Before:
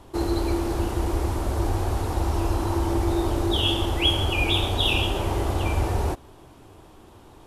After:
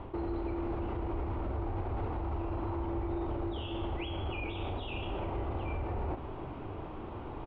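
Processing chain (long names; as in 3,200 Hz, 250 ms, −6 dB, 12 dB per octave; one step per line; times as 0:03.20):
reversed playback
downward compressor, threshold −31 dBFS, peak gain reduction 15 dB
reversed playback
brickwall limiter −34.5 dBFS, peak gain reduction 12 dB
low-pass filter 2,500 Hz 24 dB per octave
parametric band 1,700 Hz −6 dB 0.3 octaves
double-tracking delay 39 ms −11 dB
level +7 dB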